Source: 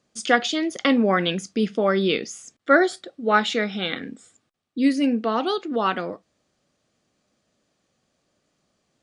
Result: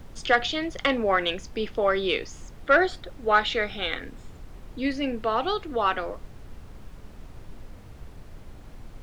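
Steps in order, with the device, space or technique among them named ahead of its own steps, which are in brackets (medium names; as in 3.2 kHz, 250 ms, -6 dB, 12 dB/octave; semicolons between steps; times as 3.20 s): aircraft cabin announcement (band-pass 430–4100 Hz; saturation -7.5 dBFS, distortion -21 dB; brown noise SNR 12 dB)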